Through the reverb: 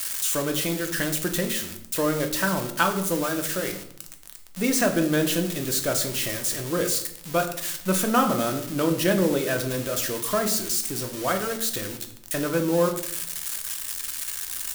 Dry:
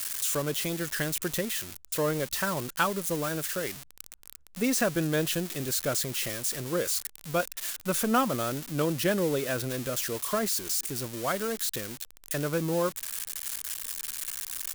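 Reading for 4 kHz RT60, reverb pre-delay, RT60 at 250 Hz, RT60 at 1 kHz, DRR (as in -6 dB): 0.55 s, 3 ms, 1.1 s, 0.65 s, 4.0 dB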